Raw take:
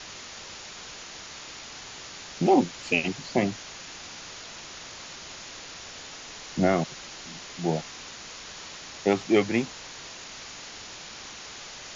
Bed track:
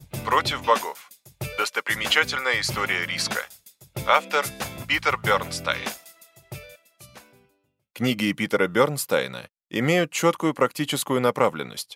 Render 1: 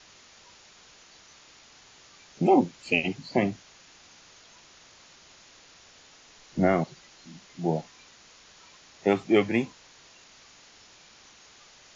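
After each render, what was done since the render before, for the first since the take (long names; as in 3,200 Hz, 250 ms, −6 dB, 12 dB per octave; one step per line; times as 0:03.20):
noise reduction from a noise print 12 dB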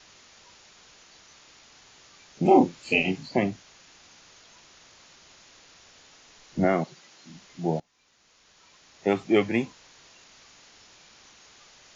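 0:02.42–0:03.28: double-tracking delay 32 ms −2.5 dB
0:06.64–0:07.30: high-pass filter 140 Hz
0:07.80–0:09.25: fade in, from −21.5 dB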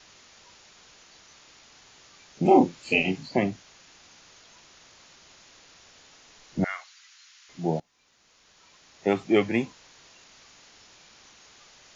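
0:06.64–0:07.49: high-pass filter 1,300 Hz 24 dB per octave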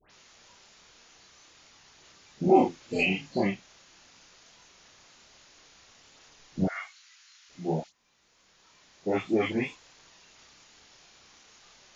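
all-pass dispersion highs, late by 106 ms, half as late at 1,800 Hz
multi-voice chorus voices 2, 1.2 Hz, delay 29 ms, depth 3 ms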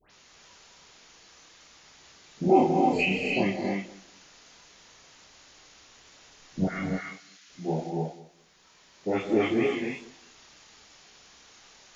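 tape delay 196 ms, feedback 23%, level −16.5 dB, low-pass 1,100 Hz
reverb whose tail is shaped and stops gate 330 ms rising, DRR 1.5 dB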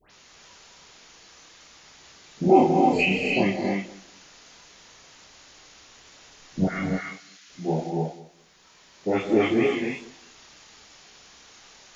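level +3.5 dB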